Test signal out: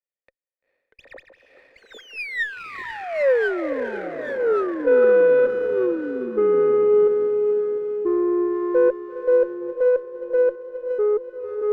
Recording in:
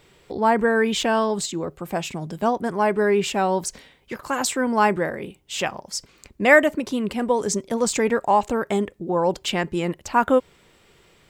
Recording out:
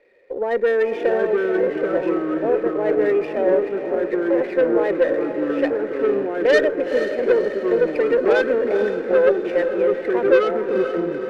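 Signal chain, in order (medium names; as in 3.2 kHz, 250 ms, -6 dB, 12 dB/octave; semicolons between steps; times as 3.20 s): tracing distortion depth 0.05 ms; high-pass 250 Hz 24 dB/octave; dynamic bell 390 Hz, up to +5 dB, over -31 dBFS, Q 0.88; in parallel at +1 dB: peak limiter -12 dBFS; on the sum: cascade formant filter e; saturation -15.5 dBFS; ever faster or slower copies 585 ms, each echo -3 st, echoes 2; echo that smears into a reverb 462 ms, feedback 53%, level -8 dB; sliding maximum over 3 samples; trim +4 dB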